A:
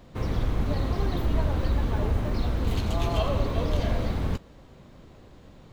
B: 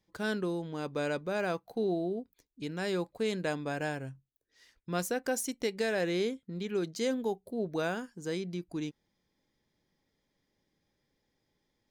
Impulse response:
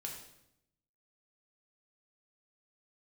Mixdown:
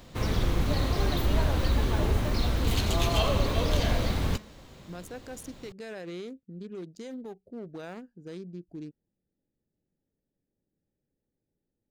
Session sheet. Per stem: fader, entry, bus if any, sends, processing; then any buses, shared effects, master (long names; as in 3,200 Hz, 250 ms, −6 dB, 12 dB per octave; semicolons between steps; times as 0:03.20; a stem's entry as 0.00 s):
−0.5 dB, 0.00 s, no send, high-shelf EQ 2,200 Hz +10.5 dB; hum removal 213.2 Hz, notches 29
−3.0 dB, 0.00 s, no send, adaptive Wiener filter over 41 samples; brickwall limiter −30 dBFS, peak gain reduction 9.5 dB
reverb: not used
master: no processing